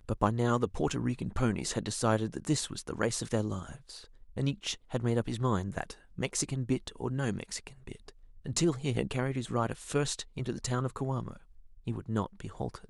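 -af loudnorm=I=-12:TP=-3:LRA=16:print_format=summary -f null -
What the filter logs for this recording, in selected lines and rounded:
Input Integrated:    -33.4 LUFS
Input True Peak:     -11.9 dBTP
Input LRA:             3.3 LU
Input Threshold:     -43.9 LUFS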